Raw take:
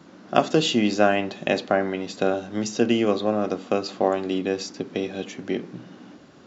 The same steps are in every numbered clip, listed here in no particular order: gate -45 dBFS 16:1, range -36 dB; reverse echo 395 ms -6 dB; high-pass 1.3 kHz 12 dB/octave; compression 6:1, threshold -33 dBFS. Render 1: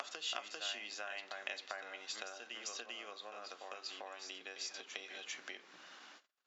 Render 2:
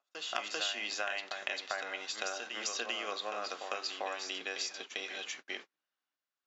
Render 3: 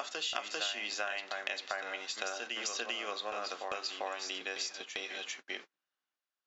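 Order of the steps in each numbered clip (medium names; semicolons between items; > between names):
reverse echo > gate > compression > high-pass; high-pass > compression > reverse echo > gate; high-pass > gate > reverse echo > compression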